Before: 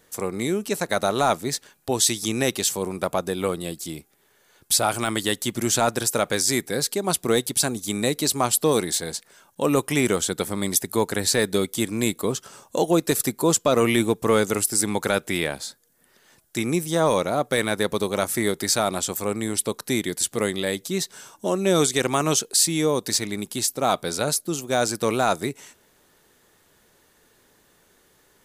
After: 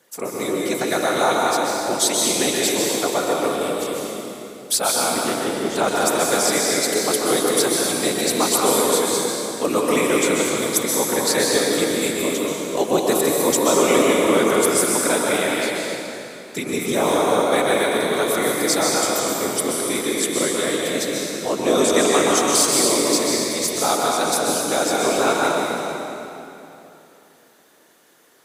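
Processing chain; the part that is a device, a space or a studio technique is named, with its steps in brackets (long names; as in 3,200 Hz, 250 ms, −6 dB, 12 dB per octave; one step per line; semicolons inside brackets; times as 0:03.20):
0:04.91–0:05.76: low-pass filter 1,200 Hz 6 dB per octave
whispering ghost (random phases in short frames; high-pass filter 230 Hz 12 dB per octave; convolution reverb RT60 3.0 s, pre-delay 119 ms, DRR −3.5 dB)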